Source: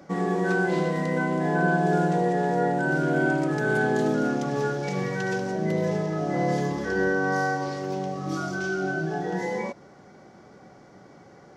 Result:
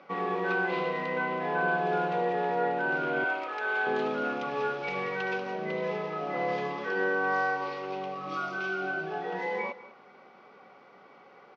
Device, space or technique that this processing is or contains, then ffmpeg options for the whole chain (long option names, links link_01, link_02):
kitchen radio: -filter_complex "[0:a]highpass=220,equalizer=frequency=320:width_type=q:width=4:gain=-10,equalizer=frequency=640:width_type=q:width=4:gain=-6,equalizer=frequency=1200:width_type=q:width=4:gain=5,equalizer=frequency=1700:width_type=q:width=4:gain=-6,equalizer=frequency=2500:width_type=q:width=4:gain=8,lowpass=frequency=3600:width=0.5412,lowpass=frequency=3600:width=1.3066,asettb=1/sr,asplit=3[link_01][link_02][link_03];[link_01]atrim=end=3.244[link_04];[link_02]atrim=start=3.24:end=3.87,asetpts=PTS-STARTPTS,afade=type=in:duration=0.004:curve=qsin,afade=type=out:start_time=0.626:duration=0.004:curve=qsin,highpass=590[link_05];[link_03]atrim=start=3.866[link_06];[link_04][link_05]acrossfade=duration=0.004:curve1=hsin:curve2=qsin[link_07];[link_07][link_06]acrossfade=duration=0.004:curve1=qsin:curve2=hsin,bass=frequency=250:gain=-11,treble=frequency=4000:gain=3,aecho=1:1:196:0.141"